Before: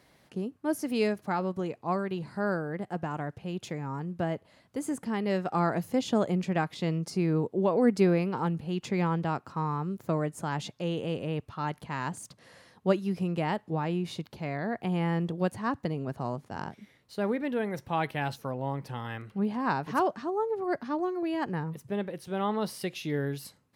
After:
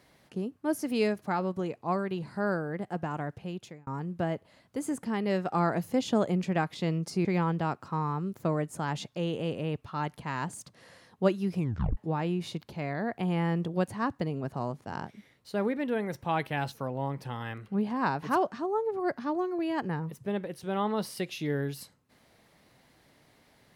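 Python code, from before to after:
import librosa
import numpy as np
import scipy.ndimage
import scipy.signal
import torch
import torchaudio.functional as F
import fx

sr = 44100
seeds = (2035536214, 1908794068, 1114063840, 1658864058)

y = fx.edit(x, sr, fx.fade_out_span(start_s=3.41, length_s=0.46),
    fx.cut(start_s=7.25, length_s=1.64),
    fx.tape_stop(start_s=13.22, length_s=0.39), tone=tone)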